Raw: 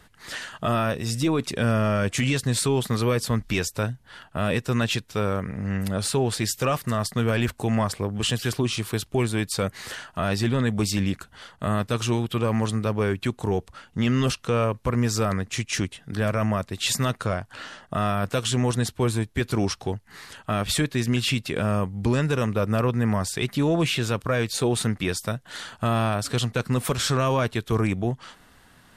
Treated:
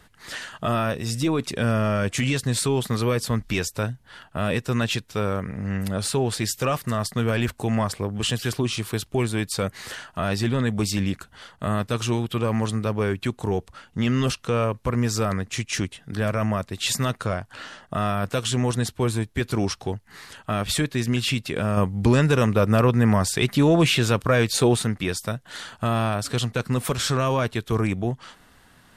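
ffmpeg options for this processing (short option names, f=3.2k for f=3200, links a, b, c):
-filter_complex "[0:a]asplit=3[a][b][c];[a]atrim=end=21.772[d];[b]atrim=start=21.768:end=24.762,asetpts=PTS-STARTPTS,volume=4.5dB[e];[c]atrim=start=24.758[f];[d][e]acrossfade=d=0.004:c1=hsin:c2=hsin[g];[g][f]acrossfade=d=0.004:c1=hsin:c2=hsin"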